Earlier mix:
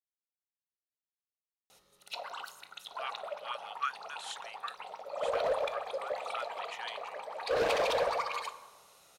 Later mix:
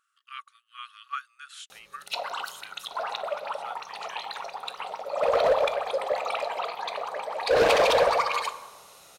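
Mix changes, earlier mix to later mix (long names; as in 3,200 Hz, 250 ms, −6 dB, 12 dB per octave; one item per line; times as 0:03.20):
speech: entry −2.70 s
background +9.0 dB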